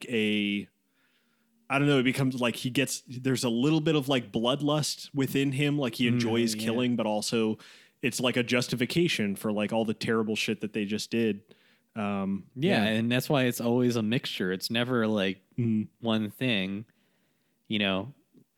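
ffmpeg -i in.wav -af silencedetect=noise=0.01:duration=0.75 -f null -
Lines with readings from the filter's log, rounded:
silence_start: 0.64
silence_end: 1.70 | silence_duration: 1.06
silence_start: 16.82
silence_end: 17.70 | silence_duration: 0.88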